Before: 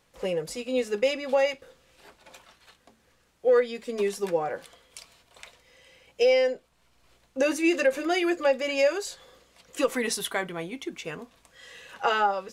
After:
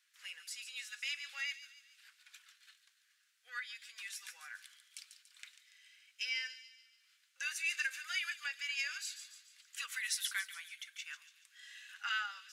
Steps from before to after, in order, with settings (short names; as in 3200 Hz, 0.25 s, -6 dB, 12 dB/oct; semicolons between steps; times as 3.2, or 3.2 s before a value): Chebyshev high-pass 1500 Hz, order 4; thin delay 0.143 s, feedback 48%, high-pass 3600 Hz, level -8 dB; gain -5.5 dB